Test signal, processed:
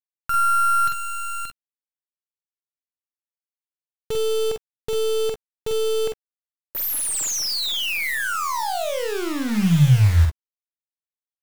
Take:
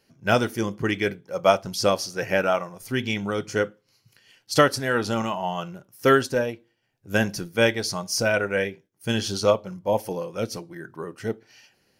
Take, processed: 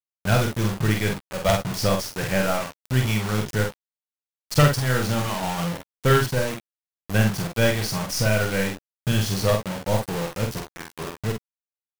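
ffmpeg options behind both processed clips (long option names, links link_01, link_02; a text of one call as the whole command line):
ffmpeg -i in.wav -filter_complex "[0:a]aeval=exprs='0.668*(cos(1*acos(clip(val(0)/0.668,-1,1)))-cos(1*PI/2))+0.0473*(cos(3*acos(clip(val(0)/0.668,-1,1)))-cos(3*PI/2))+0.266*(cos(4*acos(clip(val(0)/0.668,-1,1)))-cos(4*PI/2))+0.188*(cos(6*acos(clip(val(0)/0.668,-1,1)))-cos(6*PI/2))+0.0211*(cos(8*acos(clip(val(0)/0.668,-1,1)))-cos(8*PI/2))':channel_layout=same,lowshelf=frequency=210:width_type=q:width=1.5:gain=9,acrusher=bits=4:mix=0:aa=0.000001,asplit=2[link_01][link_02];[link_02]aecho=0:1:47|61:0.631|0.178[link_03];[link_01][link_03]amix=inputs=2:normalize=0,volume=-1dB" out.wav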